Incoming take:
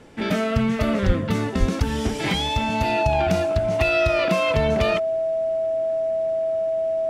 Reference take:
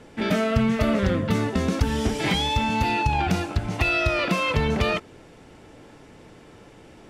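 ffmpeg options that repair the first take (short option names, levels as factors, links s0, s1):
-filter_complex "[0:a]bandreject=f=650:w=30,asplit=3[s0][s1][s2];[s0]afade=t=out:st=1.06:d=0.02[s3];[s1]highpass=f=140:w=0.5412,highpass=f=140:w=1.3066,afade=t=in:st=1.06:d=0.02,afade=t=out:st=1.18:d=0.02[s4];[s2]afade=t=in:st=1.18:d=0.02[s5];[s3][s4][s5]amix=inputs=3:normalize=0,asplit=3[s6][s7][s8];[s6]afade=t=out:st=1.59:d=0.02[s9];[s7]highpass=f=140:w=0.5412,highpass=f=140:w=1.3066,afade=t=in:st=1.59:d=0.02,afade=t=out:st=1.71:d=0.02[s10];[s8]afade=t=in:st=1.71:d=0.02[s11];[s9][s10][s11]amix=inputs=3:normalize=0"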